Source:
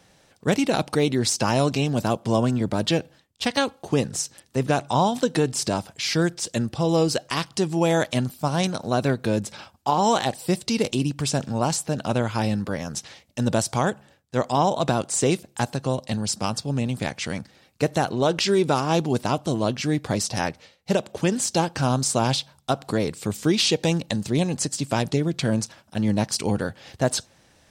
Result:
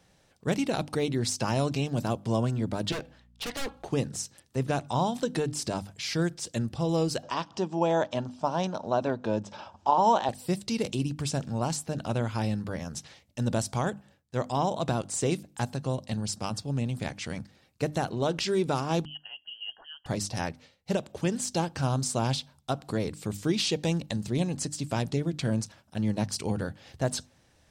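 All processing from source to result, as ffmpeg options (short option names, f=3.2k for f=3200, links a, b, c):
-filter_complex "[0:a]asettb=1/sr,asplit=3[a][b][c];[a]atrim=end=2.924[d];[b]atrim=start=2.92:end=3.89,asetpts=PTS-STARTPTS,afade=t=in:d=0.004:c=qsin,afade=t=out:st=0.966:d=0.004:c=qsin,aeval=exprs='val(0)+0.00251*(sin(2*PI*60*n/s)+sin(2*PI*2*60*n/s)/2+sin(2*PI*3*60*n/s)/3+sin(2*PI*4*60*n/s)/4+sin(2*PI*5*60*n/s)/5)':c=same,asplit=2[e][f];[f]highpass=f=720:p=1,volume=14dB,asoftclip=type=tanh:threshold=-8.5dB[g];[e][g]amix=inputs=2:normalize=0,lowpass=f=2.3k:p=1,volume=-6dB,aeval=exprs='0.0841*(abs(mod(val(0)/0.0841+3,4)-2)-1)':c=same[h];[c]atrim=start=3.886[i];[d][h]acrossfade=d=0.004:c1=hsin:c2=qsin[j];[j][i]acrossfade=d=0.004:c1=qsin:c2=hsin,asettb=1/sr,asplit=3[k][l][m];[k]atrim=end=7.234[n];[l]atrim=start=7.23:end=10.29,asetpts=PTS-STARTPTS,afade=t=in:d=0.004:c=qsin,afade=t=out:st=3.056:d=0.004:c=qsin,acompressor=mode=upward:threshold=-30dB:ratio=2.5:attack=3.2:release=140:knee=2.83:detection=peak,highpass=110,equalizer=f=140:t=q:w=4:g=-10,equalizer=f=610:t=q:w=4:g=6,equalizer=f=930:t=q:w=4:g=9,equalizer=f=2.1k:t=q:w=4:g=-7,equalizer=f=4.3k:t=q:w=4:g=-7,lowpass=f=6k:w=0.5412,lowpass=f=6k:w=1.3066[o];[m]atrim=start=10.286[p];[n][o]acrossfade=d=0.004:c1=hsin:c2=qsin[q];[q][p]acrossfade=d=0.004:c1=qsin:c2=hsin,asettb=1/sr,asplit=3[r][s][t];[r]atrim=end=19.054[u];[s]atrim=start=19.05:end=20.06,asetpts=PTS-STARTPTS,afade=t=in:d=0.004:c=qsin,afade=t=out:st=1.006:d=0.004:c=qsin,asplit=3[v][w][x];[v]bandpass=f=530:t=q:w=8,volume=0dB[y];[w]bandpass=f=1.84k:t=q:w=8,volume=-6dB[z];[x]bandpass=f=2.48k:t=q:w=8,volume=-9dB[aa];[y][z][aa]amix=inputs=3:normalize=0,lowpass=f=2.9k:t=q:w=0.5098,lowpass=f=2.9k:t=q:w=0.6013,lowpass=f=2.9k:t=q:w=0.9,lowpass=f=2.9k:t=q:w=2.563,afreqshift=-3400[ab];[t]atrim=start=20.056[ac];[u][ab]acrossfade=d=0.004:c1=hsin:c2=qsin[ad];[ad][ac]acrossfade=d=0.004:c1=qsin:c2=hsin,lowshelf=f=140:g=8,bandreject=f=50:t=h:w=6,bandreject=f=100:t=h:w=6,bandreject=f=150:t=h:w=6,bandreject=f=200:t=h:w=6,bandreject=f=250:t=h:w=6,bandreject=f=300:t=h:w=6,volume=-7.5dB"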